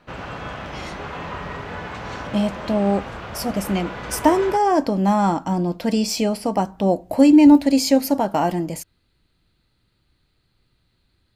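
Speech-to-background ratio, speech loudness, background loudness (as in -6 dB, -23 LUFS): 13.5 dB, -19.0 LUFS, -32.5 LUFS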